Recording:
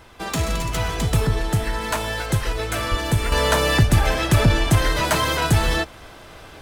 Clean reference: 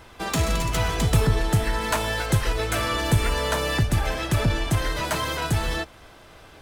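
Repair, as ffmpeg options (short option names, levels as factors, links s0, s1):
-filter_complex "[0:a]asplit=3[s0][s1][s2];[s0]afade=t=out:st=2.9:d=0.02[s3];[s1]highpass=f=140:w=0.5412,highpass=f=140:w=1.3066,afade=t=in:st=2.9:d=0.02,afade=t=out:st=3.02:d=0.02[s4];[s2]afade=t=in:st=3.02:d=0.02[s5];[s3][s4][s5]amix=inputs=3:normalize=0,asetnsamples=n=441:p=0,asendcmd='3.32 volume volume -6dB',volume=1"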